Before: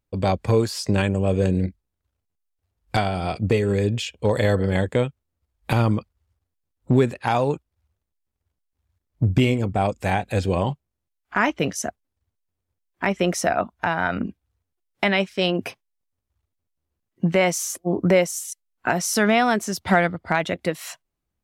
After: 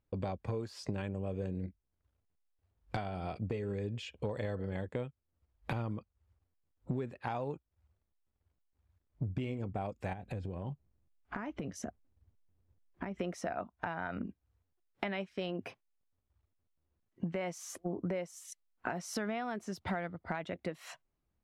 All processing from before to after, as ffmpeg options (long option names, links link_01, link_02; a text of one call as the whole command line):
ffmpeg -i in.wav -filter_complex "[0:a]asettb=1/sr,asplit=3[link_01][link_02][link_03];[link_01]atrim=end=10.134[link_04];[link_02]atrim=start=10.13:end=13.2,asetpts=PTS-STARTPTS,afade=type=in:duration=0.004:curve=qsin,afade=type=out:start_time=3.066:duration=0.004:curve=qsin,lowshelf=frequency=400:gain=9.5,acompressor=threshold=-31dB:ratio=4:attack=3.2:release=140:knee=1:detection=peak[link_05];[link_03]atrim=start=13.196[link_06];[link_04][link_05]acrossfade=duration=0.004:curve1=hsin:curve2=qsin[link_07];[link_07][link_06]acrossfade=duration=0.004:curve1=qsin:curve2=hsin,lowpass=frequency=2100:poles=1,acompressor=threshold=-36dB:ratio=4,volume=-1dB" out.wav